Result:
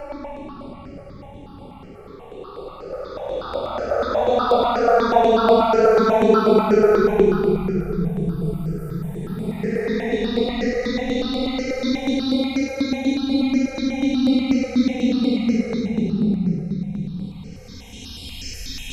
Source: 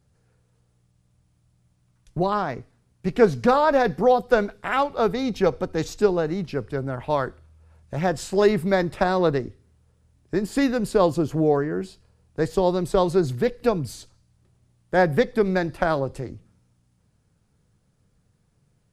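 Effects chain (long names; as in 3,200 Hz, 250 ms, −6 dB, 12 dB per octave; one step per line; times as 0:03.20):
extreme stretch with random phases 38×, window 0.05 s, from 0:04.88
step-sequenced phaser 8.2 Hz 980–6,200 Hz
level +6.5 dB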